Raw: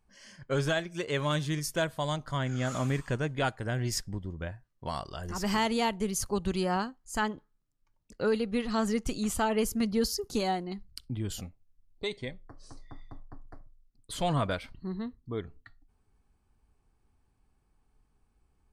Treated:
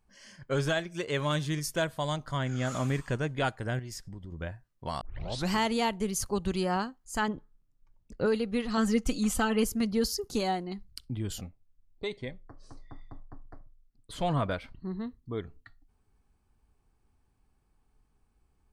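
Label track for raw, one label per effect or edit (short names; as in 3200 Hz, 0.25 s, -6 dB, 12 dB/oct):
3.790000	4.320000	compressor 4:1, threshold -39 dBFS
5.010000	5.010000	tape start 0.51 s
7.280000	8.260000	tilt -2 dB/oct
8.770000	9.640000	comb 3.9 ms, depth 67%
11.380000	15.040000	high shelf 4100 Hz -9 dB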